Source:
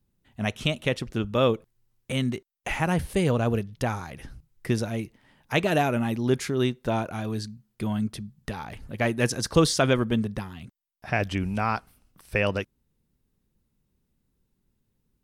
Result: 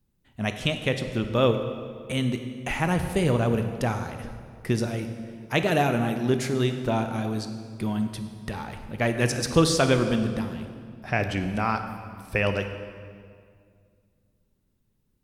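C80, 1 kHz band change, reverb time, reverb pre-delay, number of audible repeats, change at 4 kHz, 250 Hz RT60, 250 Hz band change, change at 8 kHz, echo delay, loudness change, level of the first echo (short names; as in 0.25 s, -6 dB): 9.0 dB, +1.0 dB, 2.1 s, 18 ms, none, +0.5 dB, 2.5 s, +1.0 dB, +0.5 dB, none, +0.5 dB, none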